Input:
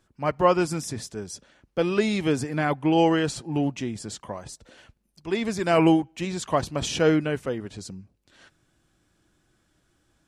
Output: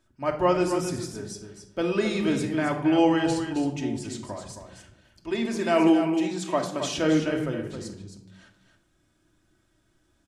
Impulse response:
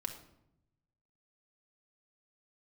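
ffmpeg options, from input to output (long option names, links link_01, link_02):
-filter_complex "[0:a]asettb=1/sr,asplit=3[link_01][link_02][link_03];[link_01]atrim=end=5.314[link_04];[link_02]atrim=start=5.31:end=6.98,asetpts=PTS-STARTPTS,afade=type=in:duration=0.004:curve=qsin,afade=type=out:start_time=1.666:duration=0.004:curve=qsin,highpass=frequency=160:width=0.5412,highpass=frequency=160:width=1.3066[link_05];[link_03]atrim=start=6.976[link_06];[link_04][link_05]acrossfade=duration=0.004:curve1=hsin:curve2=qsin[link_07];[link_07][link_06]acrossfade=duration=0.004:curve1=qsin:curve2=hsin,aecho=1:1:268:0.376[link_08];[1:a]atrim=start_sample=2205,asetrate=52920,aresample=44100[link_09];[link_08][link_09]afir=irnorm=-1:irlink=0"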